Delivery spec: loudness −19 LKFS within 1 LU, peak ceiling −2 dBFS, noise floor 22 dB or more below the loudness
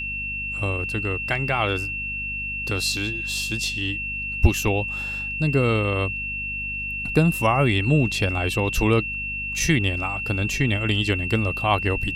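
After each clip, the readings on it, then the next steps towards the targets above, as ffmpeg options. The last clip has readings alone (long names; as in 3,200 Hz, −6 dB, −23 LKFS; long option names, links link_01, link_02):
mains hum 50 Hz; hum harmonics up to 250 Hz; level of the hum −36 dBFS; interfering tone 2,700 Hz; level of the tone −27 dBFS; integrated loudness −23.0 LKFS; sample peak −3.0 dBFS; target loudness −19.0 LKFS
→ -af "bandreject=frequency=50:width_type=h:width=4,bandreject=frequency=100:width_type=h:width=4,bandreject=frequency=150:width_type=h:width=4,bandreject=frequency=200:width_type=h:width=4,bandreject=frequency=250:width_type=h:width=4"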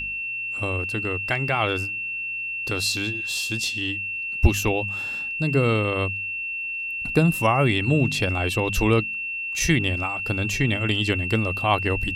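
mains hum none found; interfering tone 2,700 Hz; level of the tone −27 dBFS
→ -af "bandreject=frequency=2700:width=30"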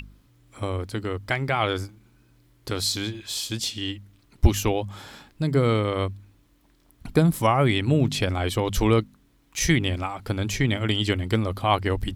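interfering tone none found; integrated loudness −24.5 LKFS; sample peak −3.5 dBFS; target loudness −19.0 LKFS
→ -af "volume=5.5dB,alimiter=limit=-2dB:level=0:latency=1"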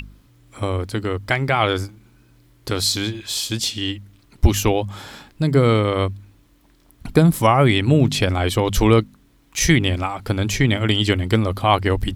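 integrated loudness −19.0 LKFS; sample peak −2.0 dBFS; background noise floor −55 dBFS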